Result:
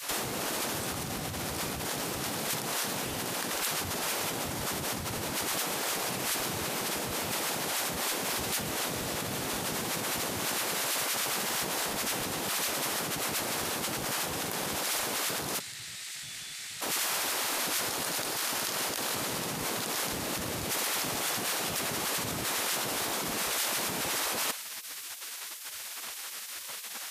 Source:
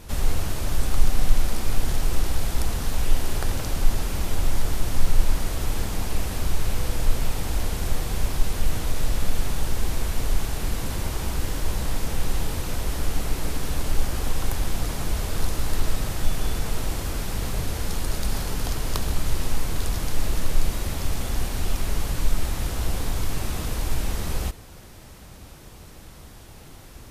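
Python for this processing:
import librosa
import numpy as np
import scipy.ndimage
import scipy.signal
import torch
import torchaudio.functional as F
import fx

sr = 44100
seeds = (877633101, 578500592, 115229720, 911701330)

y = fx.spec_gate(x, sr, threshold_db=-25, keep='weak')
y = fx.graphic_eq(y, sr, hz=(125, 250, 500, 1000, 2000, 4000, 8000), db=(8, -8, -10, -6, 11, 9, 11), at=(15.6, 16.81))
y = fx.over_compress(y, sr, threshold_db=-41.0, ratio=-1.0)
y = y * librosa.db_to_amplitude(7.5)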